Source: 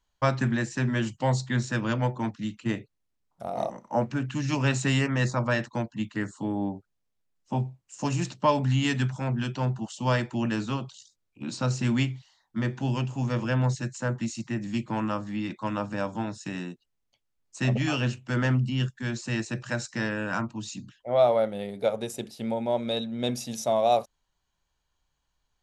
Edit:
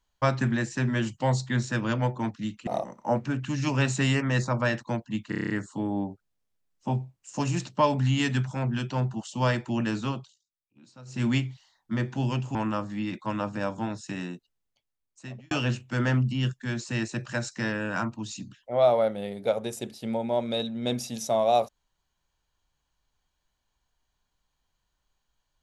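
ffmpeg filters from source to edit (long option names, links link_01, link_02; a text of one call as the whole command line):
ffmpeg -i in.wav -filter_complex "[0:a]asplit=13[link_01][link_02][link_03][link_04][link_05][link_06][link_07][link_08][link_09][link_10][link_11][link_12][link_13];[link_01]atrim=end=2.672[link_14];[link_02]atrim=start=3.528:end=6.182[link_15];[link_03]atrim=start=6.148:end=6.182[link_16];[link_04]atrim=start=6.148:end=6.182[link_17];[link_05]atrim=start=6.148:end=6.182[link_18];[link_06]atrim=start=6.148:end=6.182[link_19];[link_07]atrim=start=6.148:end=6.182[link_20];[link_08]atrim=start=6.148:end=6.182[link_21];[link_09]atrim=start=6.148:end=11,asetpts=PTS-STARTPTS,afade=type=out:start_time=4.652:duration=0.2:silence=0.0891251[link_22];[link_10]atrim=start=11:end=11.71,asetpts=PTS-STARTPTS,volume=-21dB[link_23];[link_11]atrim=start=11.71:end=13.202,asetpts=PTS-STARTPTS,afade=type=in:duration=0.2:silence=0.0891251[link_24];[link_12]atrim=start=14.918:end=17.88,asetpts=PTS-STARTPTS,afade=type=out:start_time=1.792:duration=1.17[link_25];[link_13]atrim=start=17.88,asetpts=PTS-STARTPTS,afade=type=in:duration=0.004:curve=hsin[link_26];[link_14][link_15]acrossfade=duration=0.004:curve1=hsin:curve2=hsin[link_27];[link_27][link_16]acrossfade=duration=0.004:curve1=hsin:curve2=hsin[link_28];[link_28][link_17]acrossfade=duration=0.004:curve1=hsin:curve2=hsin[link_29];[link_29][link_18]acrossfade=duration=0.004:curve1=hsin:curve2=hsin[link_30];[link_30][link_19]acrossfade=duration=0.004:curve1=hsin:curve2=hsin[link_31];[link_31][link_20]acrossfade=duration=0.004:curve1=hsin:curve2=hsin[link_32];[link_32][link_21]acrossfade=duration=0.004:curve1=hsin:curve2=hsin[link_33];[link_22][link_23][link_24]concat=n=3:v=0:a=1[link_34];[link_33][link_34]acrossfade=duration=0.004:curve1=hsin:curve2=hsin[link_35];[link_25][link_26]concat=n=2:v=0:a=1[link_36];[link_35][link_36]acrossfade=duration=0.004:curve1=hsin:curve2=hsin" out.wav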